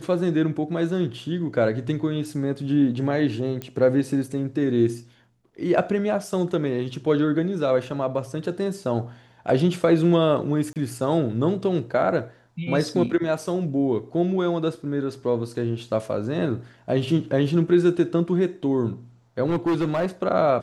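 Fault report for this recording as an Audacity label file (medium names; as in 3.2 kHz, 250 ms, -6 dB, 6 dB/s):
3.620000	3.620000	pop -17 dBFS
10.730000	10.760000	dropout 28 ms
19.460000	20.070000	clipped -18.5 dBFS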